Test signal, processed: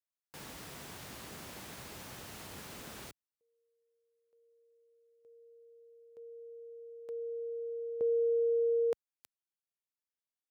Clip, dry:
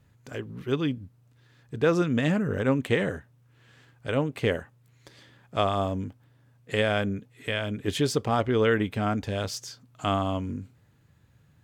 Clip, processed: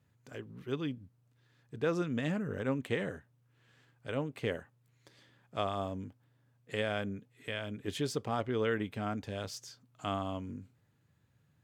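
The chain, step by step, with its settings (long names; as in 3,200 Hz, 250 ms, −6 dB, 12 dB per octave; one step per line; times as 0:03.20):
high-pass filter 82 Hz
level −9 dB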